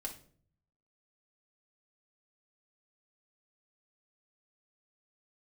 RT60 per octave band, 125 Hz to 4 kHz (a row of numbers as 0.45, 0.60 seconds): 1.0, 0.75, 0.60, 0.40, 0.40, 0.35 seconds